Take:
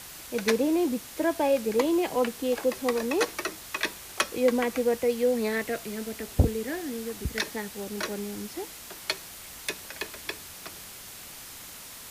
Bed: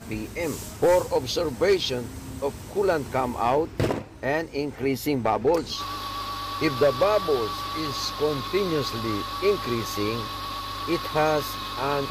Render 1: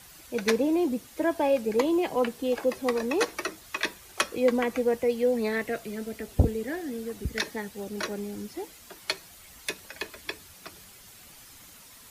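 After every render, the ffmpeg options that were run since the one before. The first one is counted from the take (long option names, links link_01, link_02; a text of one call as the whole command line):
ffmpeg -i in.wav -af "afftdn=noise_reduction=9:noise_floor=-44" out.wav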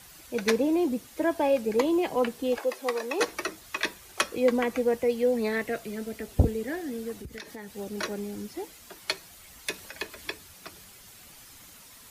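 ffmpeg -i in.wav -filter_complex "[0:a]asettb=1/sr,asplit=3[link_01][link_02][link_03];[link_01]atrim=end=2.584[link_04];[link_02]atrim=start=2.58:end=3.2,asetpts=PTS-STARTPTS,afade=type=in:duration=0.004:curve=qsin,afade=type=out:start_time=0.616:duration=0.004:curve=qsin,highpass=440[link_05];[link_03]atrim=start=3.196[link_06];[link_04][link_05]acrossfade=duration=0.004:curve1=hsin:curve2=qsin[link_07];[link_07][link_06]acrossfade=duration=0.004:curve1=qsin:curve2=hsin,asettb=1/sr,asplit=3[link_08][link_09][link_10];[link_08]atrim=end=7.214[link_11];[link_09]atrim=start=7.21:end=7.7,asetpts=PTS-STARTPTS,afade=type=in:duration=0.004:curve=qsin,afade=type=out:start_time=0.486:duration=0.004:curve=qsin,acompressor=threshold=-37dB:ratio=6:attack=3.2:release=140:knee=1:detection=peak[link_12];[link_10]atrim=start=7.696[link_13];[link_11][link_12]acrossfade=duration=0.004:curve1=hsin:curve2=qsin[link_14];[link_14][link_13]acrossfade=duration=0.004:curve1=qsin:curve2=hsin,asettb=1/sr,asplit=3[link_15][link_16][link_17];[link_15]atrim=end=9.744[link_18];[link_16]atrim=start=9.74:end=10.33,asetpts=PTS-STARTPTS,afade=type=in:duration=0.004:curve=qsin,afade=type=out:start_time=0.586:duration=0.004:curve=qsin,acompressor=mode=upward:threshold=-40dB:ratio=2.5:attack=3.2:release=140:knee=2.83:detection=peak[link_19];[link_17]atrim=start=10.326[link_20];[link_18][link_19]acrossfade=duration=0.004:curve1=hsin:curve2=qsin[link_21];[link_21][link_20]acrossfade=duration=0.004:curve1=qsin:curve2=hsin" out.wav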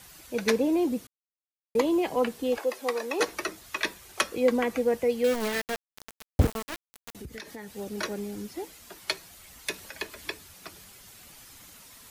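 ffmpeg -i in.wav -filter_complex "[0:a]asettb=1/sr,asplit=3[link_01][link_02][link_03];[link_01]atrim=end=5.244[link_04];[link_02]atrim=start=5.24:end=7.15,asetpts=PTS-STARTPTS,afade=type=in:duration=0.004:curve=qsin,afade=type=out:start_time=1.906:duration=0.004:curve=qsin,aeval=exprs='val(0)*gte(abs(val(0)),0.0473)':channel_layout=same[link_05];[link_03]atrim=start=7.146[link_06];[link_04][link_05]acrossfade=duration=0.004:curve1=hsin:curve2=qsin[link_07];[link_07][link_06]acrossfade=duration=0.004:curve1=qsin:curve2=hsin,asplit=3[link_08][link_09][link_10];[link_08]atrim=end=1.07,asetpts=PTS-STARTPTS,afade=type=out:start_time=1.066:duration=0.004:curve=hsin[link_11];[link_09]atrim=start=1.07:end=1.75,asetpts=PTS-STARTPTS,volume=0[link_12];[link_10]atrim=start=1.75,asetpts=PTS-STARTPTS,afade=type=in:duration=0.004:curve=hsin[link_13];[link_11][link_12][link_13]concat=n=3:v=0:a=1" out.wav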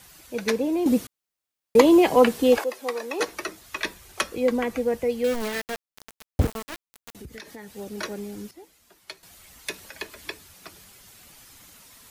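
ffmpeg -i in.wav -filter_complex "[0:a]asettb=1/sr,asplit=3[link_01][link_02][link_03];[link_01]atrim=end=3.724[link_04];[link_02]atrim=start=3.72:end=5.42,asetpts=PTS-STARTPTS,afade=type=in:duration=0.004:curve=qsin,afade=type=out:start_time=1.696:duration=0.004:curve=qsin,lowshelf=frequency=110:gain=8.5[link_05];[link_03]atrim=start=5.416[link_06];[link_04][link_05]acrossfade=duration=0.004:curve1=hsin:curve2=qsin[link_07];[link_07][link_06]acrossfade=duration=0.004:curve1=qsin:curve2=hsin,asplit=5[link_08][link_09][link_10][link_11][link_12];[link_08]atrim=end=0.862[link_13];[link_09]atrim=start=0.858:end=2.642,asetpts=PTS-STARTPTS,volume=9.5dB[link_14];[link_10]atrim=start=2.638:end=8.512[link_15];[link_11]atrim=start=8.508:end=9.232,asetpts=PTS-STARTPTS,volume=-10.5dB[link_16];[link_12]atrim=start=9.228[link_17];[link_13][link_14]acrossfade=duration=0.004:curve1=hsin:curve2=hsin[link_18];[link_18][link_15]acrossfade=duration=0.004:curve1=hsin:curve2=hsin[link_19];[link_19][link_16]acrossfade=duration=0.004:curve1=hsin:curve2=hsin[link_20];[link_20][link_17]acrossfade=duration=0.004:curve1=hsin:curve2=hsin" out.wav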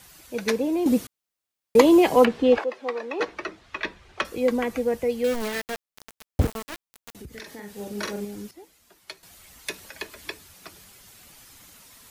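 ffmpeg -i in.wav -filter_complex "[0:a]asettb=1/sr,asplit=3[link_01][link_02][link_03];[link_01]atrim=end=2.254[link_04];[link_02]atrim=start=2.25:end=4.25,asetpts=PTS-STARTPTS,afade=type=in:duration=0.004:curve=qsin,afade=type=out:start_time=1.996:duration=0.004:curve=qsin,lowpass=3200[link_05];[link_03]atrim=start=4.246[link_06];[link_04][link_05]acrossfade=duration=0.004:curve1=hsin:curve2=qsin[link_07];[link_07][link_06]acrossfade=duration=0.004:curve1=qsin:curve2=hsin,asettb=1/sr,asplit=3[link_08][link_09][link_10];[link_08]atrim=end=7.314[link_11];[link_09]atrim=start=7.31:end=8.25,asetpts=PTS-STARTPTS,afade=type=in:duration=0.004:curve=qsin,afade=type=out:start_time=0.936:duration=0.004:curve=qsin,asplit=2[link_12][link_13];[link_13]adelay=44,volume=-4dB[link_14];[link_12][link_14]amix=inputs=2:normalize=0,atrim=end_sample=41454[link_15];[link_10]atrim=start=8.246[link_16];[link_11][link_15]acrossfade=duration=0.004:curve1=hsin:curve2=qsin[link_17];[link_17][link_16]acrossfade=duration=0.004:curve1=qsin:curve2=hsin" out.wav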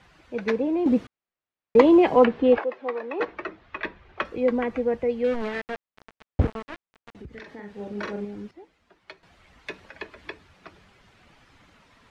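ffmpeg -i in.wav -af "lowpass=2400" out.wav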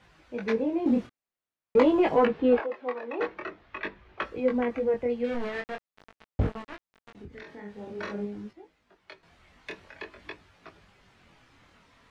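ffmpeg -i in.wav -af "asoftclip=type=tanh:threshold=-6.5dB,flanger=delay=18.5:depth=6.7:speed=0.47" out.wav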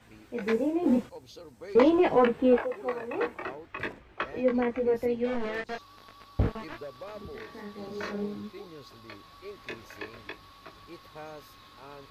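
ffmpeg -i in.wav -i bed.wav -filter_complex "[1:a]volume=-21.5dB[link_01];[0:a][link_01]amix=inputs=2:normalize=0" out.wav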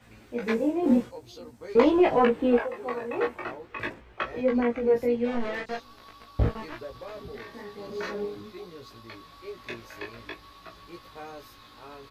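ffmpeg -i in.wav -filter_complex "[0:a]asplit=2[link_01][link_02];[link_02]adelay=17,volume=-3dB[link_03];[link_01][link_03]amix=inputs=2:normalize=0,asplit=2[link_04][link_05];[link_05]adelay=507.3,volume=-30dB,highshelf=frequency=4000:gain=-11.4[link_06];[link_04][link_06]amix=inputs=2:normalize=0" out.wav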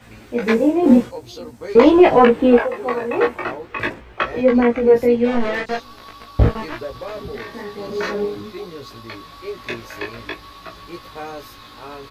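ffmpeg -i in.wav -af "volume=10dB,alimiter=limit=-1dB:level=0:latency=1" out.wav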